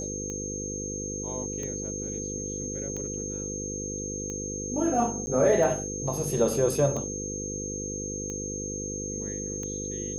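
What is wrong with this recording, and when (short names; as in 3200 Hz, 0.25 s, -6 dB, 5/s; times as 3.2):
buzz 50 Hz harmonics 10 -36 dBFS
tick 45 rpm -23 dBFS
tone 6400 Hz -34 dBFS
5.26–5.27 gap 10 ms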